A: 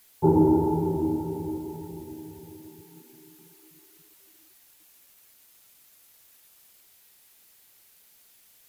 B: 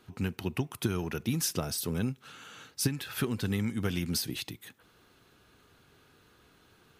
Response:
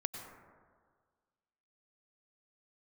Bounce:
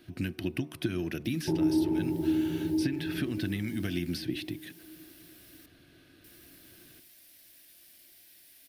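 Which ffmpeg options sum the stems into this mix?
-filter_complex "[0:a]adelay=1250,volume=2.5dB,asplit=3[a][b][c];[a]atrim=end=5.66,asetpts=PTS-STARTPTS,afade=t=out:st=5.656:d=0.004:c=hsin[d];[b]atrim=start=5.66:end=6.24,asetpts=PTS-STARTPTS,volume=0[e];[c]atrim=start=6.24,asetpts=PTS-STARTPTS,afade=t=in:d=0.004:c=hsin[f];[d][e][f]concat=n=3:v=0:a=1[g];[1:a]volume=3dB[h];[g][h]amix=inputs=2:normalize=0,bandreject=f=75.13:t=h:w=4,bandreject=f=150.26:t=h:w=4,bandreject=f=225.39:t=h:w=4,bandreject=f=300.52:t=h:w=4,bandreject=f=375.65:t=h:w=4,bandreject=f=450.78:t=h:w=4,bandreject=f=525.91:t=h:w=4,bandreject=f=601.04:t=h:w=4,bandreject=f=676.17:t=h:w=4,bandreject=f=751.3:t=h:w=4,bandreject=f=826.43:t=h:w=4,bandreject=f=901.56:t=h:w=4,bandreject=f=976.69:t=h:w=4,bandreject=f=1.05182k:t=h:w=4,bandreject=f=1.12695k:t=h:w=4,bandreject=f=1.20208k:t=h:w=4,bandreject=f=1.27721k:t=h:w=4,acrossover=split=1000|3600|7300[i][j][k][l];[i]acompressor=threshold=-31dB:ratio=4[m];[j]acompressor=threshold=-39dB:ratio=4[n];[k]acompressor=threshold=-51dB:ratio=4[o];[l]acompressor=threshold=-54dB:ratio=4[p];[m][n][o][p]amix=inputs=4:normalize=0,superequalizer=6b=2.24:7b=0.501:9b=0.282:10b=0.355:15b=0.501"

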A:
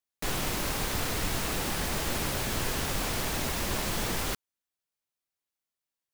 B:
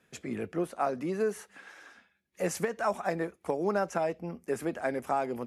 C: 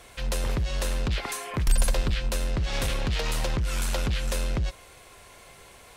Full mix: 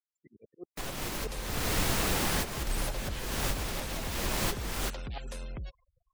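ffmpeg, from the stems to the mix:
-filter_complex "[0:a]adelay=550,volume=2dB[a];[1:a]equalizer=f=450:t=o:w=2.3:g=3.5,aphaser=in_gain=1:out_gain=1:delay=2.6:decay=0.47:speed=0.77:type=triangular,aeval=exprs='val(0)*pow(10,-36*if(lt(mod(-11*n/s,1),2*abs(-11)/1000),1-mod(-11*n/s,1)/(2*abs(-11)/1000),(mod(-11*n/s,1)-2*abs(-11)/1000)/(1-2*abs(-11)/1000))/20)':c=same,volume=-14dB,asplit=2[b][c];[2:a]adelay=1000,volume=-12.5dB[d];[c]apad=whole_len=294946[e];[a][e]sidechaincompress=threshold=-54dB:ratio=4:attack=16:release=359[f];[f][b][d]amix=inputs=3:normalize=0,afftfilt=real='re*gte(hypot(re,im),0.00355)':imag='im*gte(hypot(re,im),0.00355)':win_size=1024:overlap=0.75"

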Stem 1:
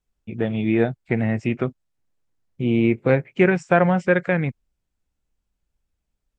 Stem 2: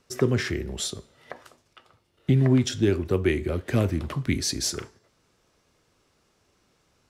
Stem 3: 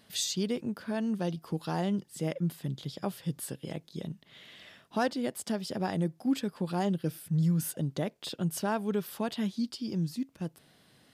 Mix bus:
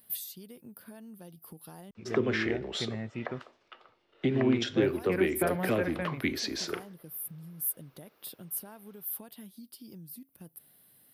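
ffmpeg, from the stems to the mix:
-filter_complex "[0:a]adelay=1700,volume=-15dB[a];[1:a]acrossover=split=270 4300:gain=0.126 1 0.0631[b][c][d];[b][c][d]amix=inputs=3:normalize=0,acrossover=split=270[e][f];[f]acompressor=threshold=-28dB:ratio=4[g];[e][g]amix=inputs=2:normalize=0,adelay=1950,volume=1.5dB[h];[2:a]acompressor=threshold=-37dB:ratio=6,aexciter=amount=9.1:drive=9.4:freq=10k,volume=-8.5dB,asplit=3[i][j][k];[i]atrim=end=1.91,asetpts=PTS-STARTPTS,afade=t=out:st=1.906:d=0.004:c=hsin[l];[j]atrim=start=1.91:end=4.82,asetpts=PTS-STARTPTS,volume=0[m];[k]atrim=start=4.82,asetpts=PTS-STARTPTS,afade=t=in:d=0.004:c=hsin[n];[l][m][n]concat=n=3:v=0:a=1[o];[a][h][o]amix=inputs=3:normalize=0"

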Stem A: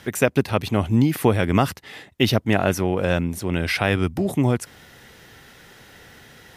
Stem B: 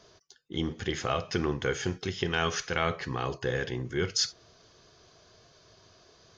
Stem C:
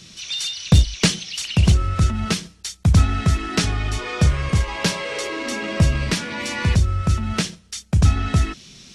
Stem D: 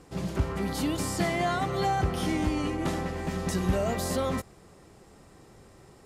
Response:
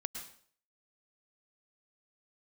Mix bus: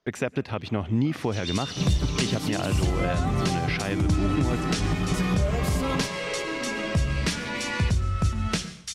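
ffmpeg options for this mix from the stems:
-filter_complex "[0:a]agate=range=-34dB:threshold=-38dB:ratio=16:detection=peak,lowpass=4.8k,volume=-3.5dB,asplit=2[a][b];[b]volume=-18dB[c];[1:a]highshelf=f=5.1k:g=-9.5,volume=-17.5dB[d];[2:a]flanger=delay=7.6:depth=7.8:regen=89:speed=0.58:shape=triangular,adelay=1150,volume=-1.5dB,asplit=2[e][f];[f]volume=-6.5dB[g];[3:a]lowshelf=f=480:g=7.5,aecho=1:1:6.8:0.88,acompressor=threshold=-23dB:ratio=2,adelay=1650,volume=0dB[h];[4:a]atrim=start_sample=2205[i];[c][g]amix=inputs=2:normalize=0[j];[j][i]afir=irnorm=-1:irlink=0[k];[a][d][e][h][k]amix=inputs=5:normalize=0,alimiter=limit=-14.5dB:level=0:latency=1:release=224"

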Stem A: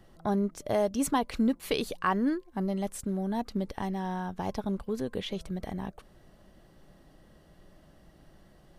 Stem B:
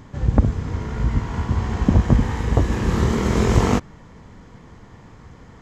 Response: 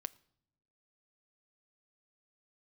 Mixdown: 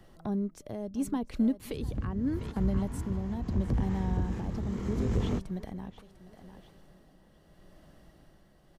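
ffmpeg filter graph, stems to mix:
-filter_complex "[0:a]volume=1dB,asplit=3[a][b][c];[b]volume=-18dB[d];[1:a]asoftclip=type=tanh:threshold=-12dB,adelay=1600,volume=-8.5dB[e];[c]apad=whole_len=318264[f];[e][f]sidechaingate=range=-33dB:threshold=-45dB:ratio=16:detection=peak[g];[d]aecho=0:1:699|1398|2097|2796:1|0.3|0.09|0.027[h];[a][g][h]amix=inputs=3:normalize=0,acrossover=split=370[i][j];[j]acompressor=threshold=-42dB:ratio=4[k];[i][k]amix=inputs=2:normalize=0,tremolo=f=0.76:d=0.46"

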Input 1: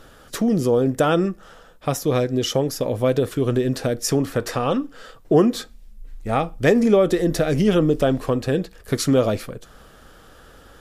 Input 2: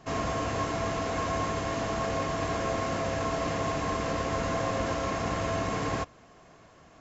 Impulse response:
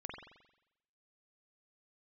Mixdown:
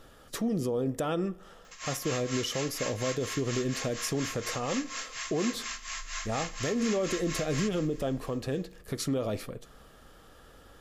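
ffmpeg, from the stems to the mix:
-filter_complex "[0:a]alimiter=limit=-15.5dB:level=0:latency=1:release=125,volume=-7.5dB,asplit=2[a][b];[b]volume=-15dB[c];[1:a]highpass=f=1.4k:w=0.5412,highpass=f=1.4k:w=1.3066,aemphasis=mode=production:type=50fm,tremolo=f=4.2:d=0.87,adelay=1650,volume=1.5dB,asplit=2[d][e];[e]volume=-13dB[f];[2:a]atrim=start_sample=2205[g];[c][g]afir=irnorm=-1:irlink=0[h];[f]aecho=0:1:188|376|564|752|940:1|0.36|0.13|0.0467|0.0168[i];[a][d][h][i]amix=inputs=4:normalize=0,bandreject=f=1.5k:w=12"

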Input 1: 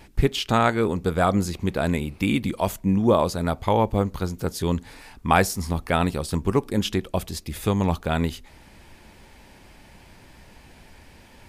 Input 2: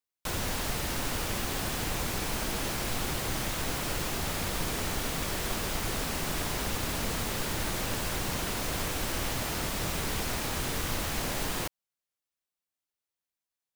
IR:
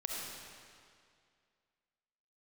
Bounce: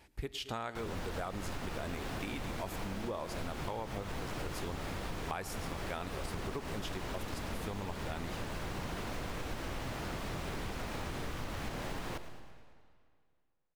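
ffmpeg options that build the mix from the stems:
-filter_complex "[0:a]highpass=41,equalizer=f=170:w=0.86:g=-7,volume=-11.5dB,asplit=4[a][b][c][d];[b]volume=-19.5dB[e];[c]volume=-19dB[f];[1:a]lowpass=f=2.1k:p=1,adelay=500,volume=-3.5dB,asplit=3[g][h][i];[h]volume=-13.5dB[j];[i]volume=-15.5dB[k];[d]apad=whole_len=628696[l];[g][l]sidechaincompress=threshold=-35dB:ratio=8:attack=43:release=199[m];[2:a]atrim=start_sample=2205[n];[e][j]amix=inputs=2:normalize=0[o];[o][n]afir=irnorm=-1:irlink=0[p];[f][k]amix=inputs=2:normalize=0,aecho=0:1:110|220|330|440|550|660|770|880:1|0.55|0.303|0.166|0.0915|0.0503|0.0277|0.0152[q];[a][m][p][q]amix=inputs=4:normalize=0,acompressor=threshold=-35dB:ratio=6"

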